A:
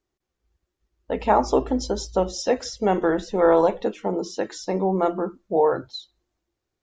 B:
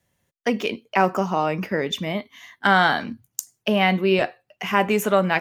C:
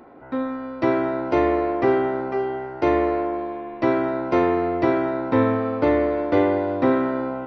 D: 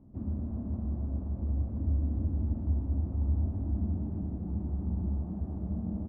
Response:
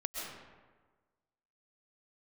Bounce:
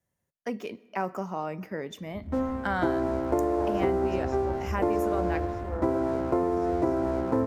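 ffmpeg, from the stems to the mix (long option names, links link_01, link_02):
-filter_complex "[0:a]adelay=2300,volume=-18.5dB[link_01];[1:a]volume=-10.5dB,asplit=2[link_02][link_03];[link_03]volume=-23.5dB[link_04];[2:a]lowpass=1100,bandreject=frequency=50:width_type=h:width=6,bandreject=frequency=100:width_type=h:width=6,bandreject=frequency=150:width_type=h:width=6,bandreject=frequency=200:width_type=h:width=6,bandreject=frequency=250:width_type=h:width=6,aeval=exprs='sgn(val(0))*max(abs(val(0))-0.0133,0)':channel_layout=same,adelay=2000,volume=1dB[link_05];[3:a]equalizer=frequency=69:width=1.5:gain=4,adelay=2000,volume=-8dB[link_06];[4:a]atrim=start_sample=2205[link_07];[link_04][link_07]afir=irnorm=-1:irlink=0[link_08];[link_01][link_02][link_05][link_06][link_08]amix=inputs=5:normalize=0,equalizer=frequency=3200:width_type=o:width=1.2:gain=-8.5,acompressor=threshold=-22dB:ratio=6"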